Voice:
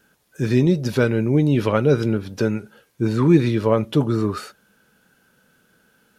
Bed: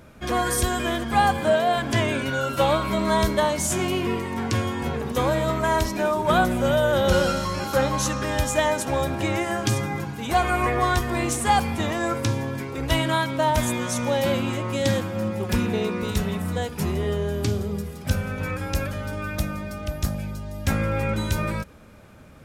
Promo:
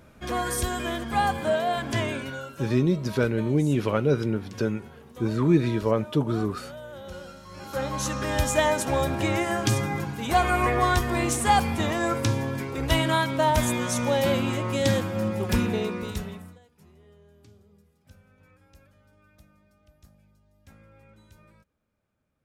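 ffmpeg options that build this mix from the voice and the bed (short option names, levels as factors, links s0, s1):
-filter_complex "[0:a]adelay=2200,volume=0.531[s0];[1:a]volume=5.96,afade=t=out:st=2.05:d=0.56:silence=0.158489,afade=t=in:st=7.45:d=0.99:silence=0.1,afade=t=out:st=15.58:d=1.01:silence=0.0334965[s1];[s0][s1]amix=inputs=2:normalize=0"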